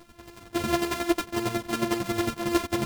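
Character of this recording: a buzz of ramps at a fixed pitch in blocks of 128 samples; chopped level 11 Hz, depth 65%, duty 20%; a shimmering, thickened sound

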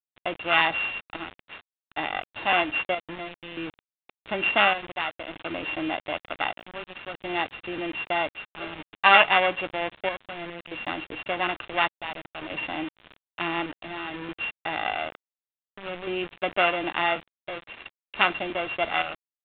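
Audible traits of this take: a buzz of ramps at a fixed pitch in blocks of 16 samples; chopped level 0.56 Hz, depth 60%, duty 65%; a quantiser's noise floor 6-bit, dither none; µ-law

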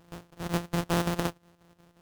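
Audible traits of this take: a buzz of ramps at a fixed pitch in blocks of 256 samples; chopped level 5.6 Hz, depth 60%, duty 70%; aliases and images of a low sample rate 2.2 kHz, jitter 20%

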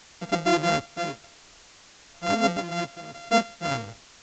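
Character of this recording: a buzz of ramps at a fixed pitch in blocks of 64 samples; random-step tremolo, depth 80%; a quantiser's noise floor 8-bit, dither triangular; µ-law

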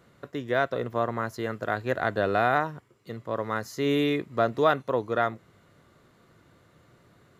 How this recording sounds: noise floor -61 dBFS; spectral tilt -4.0 dB/octave

